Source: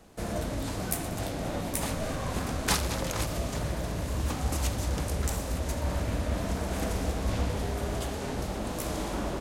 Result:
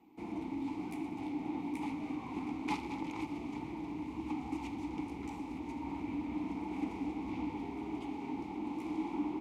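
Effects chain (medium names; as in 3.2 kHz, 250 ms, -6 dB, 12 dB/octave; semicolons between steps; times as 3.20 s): whistle 14 kHz -53 dBFS; vowel filter u; trim +5.5 dB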